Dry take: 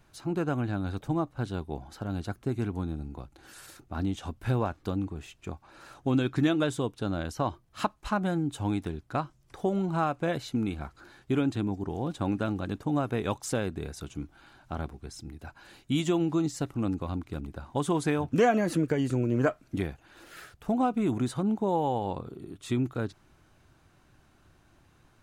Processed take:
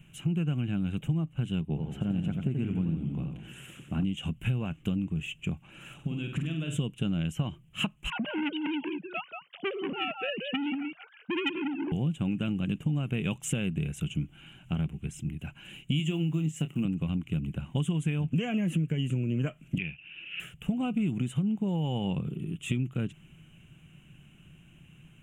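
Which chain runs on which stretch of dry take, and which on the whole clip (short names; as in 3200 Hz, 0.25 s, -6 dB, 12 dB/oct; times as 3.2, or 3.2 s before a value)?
1.61–4.04 HPF 300 Hz 6 dB/oct + tilt -2.5 dB/oct + warbling echo 85 ms, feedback 55%, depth 192 cents, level -6 dB
5.94–6.77 compressor 12:1, threshold -35 dBFS + flutter echo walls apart 8.5 m, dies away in 0.54 s
8.1–11.92 sine-wave speech + echo 0.183 s -6.5 dB + core saturation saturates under 1900 Hz
15.99–16.85 block floating point 7-bit + HPF 150 Hz + doubler 26 ms -12 dB
19.78–20.4 ladder low-pass 2800 Hz, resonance 75% + high shelf 2000 Hz +8.5 dB
whole clip: EQ curve 100 Hz 0 dB, 160 Hz +15 dB, 270 Hz 0 dB, 930 Hz -10 dB, 1800 Hz -3 dB, 2900 Hz +15 dB, 4500 Hz -23 dB, 7200 Hz +2 dB, 11000 Hz -1 dB; compressor, threshold -28 dBFS; gain +2 dB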